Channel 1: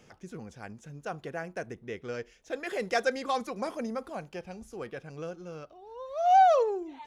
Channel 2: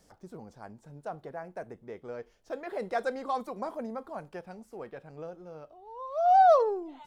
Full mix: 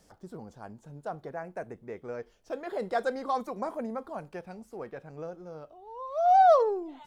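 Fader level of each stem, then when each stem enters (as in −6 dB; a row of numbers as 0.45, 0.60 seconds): −17.5, +1.0 decibels; 0.00, 0.00 seconds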